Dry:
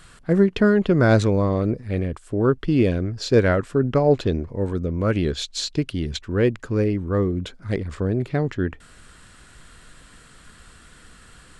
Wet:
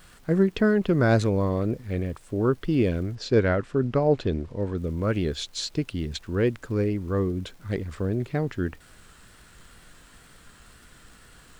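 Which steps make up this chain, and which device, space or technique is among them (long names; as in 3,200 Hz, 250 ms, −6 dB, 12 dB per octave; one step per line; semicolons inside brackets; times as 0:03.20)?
vinyl LP (tape wow and flutter 47 cents; surface crackle; pink noise bed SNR 34 dB)
0:03.15–0:04.78: Bessel low-pass filter 5,500 Hz, order 2
level −4 dB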